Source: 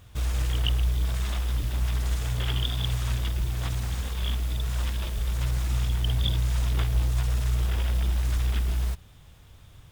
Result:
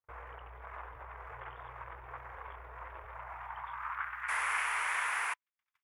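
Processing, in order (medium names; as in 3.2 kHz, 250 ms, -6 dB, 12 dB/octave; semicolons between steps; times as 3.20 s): peak limiter -22.5 dBFS, peak gain reduction 11 dB; gate -45 dBFS, range -37 dB; band-pass sweep 500 Hz -> 4.9 kHz, 5.09–9.04 s; tempo 1.7×; painted sound noise, 4.28–5.34 s, 340–11000 Hz -41 dBFS; FFT filter 100 Hz 0 dB, 190 Hz -25 dB, 390 Hz -8 dB, 600 Hz -4 dB, 1 kHz +15 dB, 2.2 kHz +13 dB, 4 kHz -15 dB, 8.1 kHz -10 dB, 15 kHz +7 dB; trim +1.5 dB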